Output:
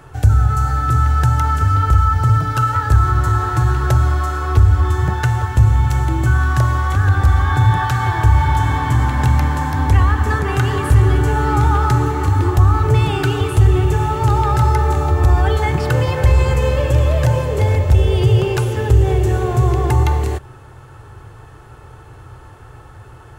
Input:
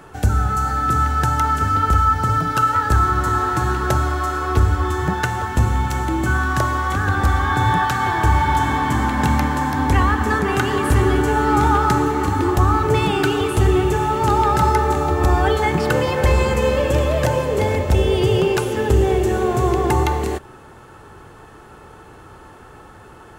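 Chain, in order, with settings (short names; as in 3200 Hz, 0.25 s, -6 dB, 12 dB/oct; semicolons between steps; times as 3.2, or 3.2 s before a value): resonant low shelf 150 Hz +6.5 dB, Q 3; in parallel at 0 dB: limiter -6.5 dBFS, peak gain reduction 10 dB; on the sum: gain -7 dB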